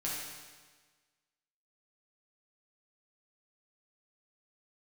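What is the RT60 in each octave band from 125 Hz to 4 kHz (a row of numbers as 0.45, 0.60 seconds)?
1.4, 1.4, 1.4, 1.4, 1.4, 1.4 seconds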